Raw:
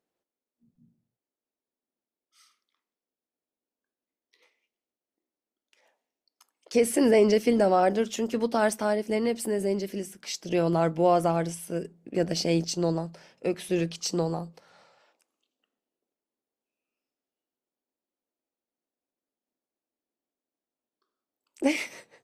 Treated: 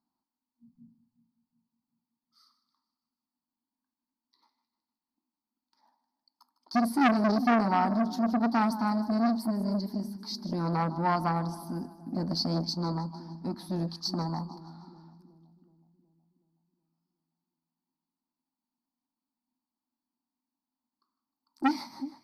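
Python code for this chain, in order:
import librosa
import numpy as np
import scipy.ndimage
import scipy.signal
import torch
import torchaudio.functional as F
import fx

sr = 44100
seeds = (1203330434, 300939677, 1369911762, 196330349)

y = fx.curve_eq(x, sr, hz=(160.0, 250.0, 490.0, 920.0, 2800.0, 4500.0, 7300.0, 12000.0), db=(0, 10, -25, 9, -28, 5, -23, -6))
y = fx.echo_split(y, sr, split_hz=560.0, low_ms=371, high_ms=154, feedback_pct=52, wet_db=-15)
y = fx.transformer_sat(y, sr, knee_hz=1400.0)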